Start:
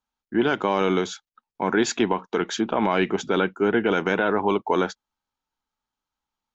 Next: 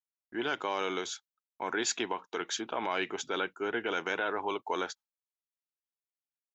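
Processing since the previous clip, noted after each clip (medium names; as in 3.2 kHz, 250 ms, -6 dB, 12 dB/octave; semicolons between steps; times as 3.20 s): peaking EQ 200 Hz -9 dB 0.42 oct; gate with hold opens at -34 dBFS; tilt EQ +2.5 dB/octave; trim -9 dB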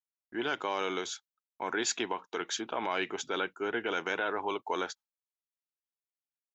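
no audible change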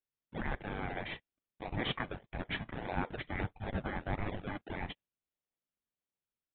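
four frequency bands reordered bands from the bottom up 2341; in parallel at -7 dB: decimation with a swept rate 38×, swing 60% 1.6 Hz; on the sum: resampled via 8 kHz; trim -1 dB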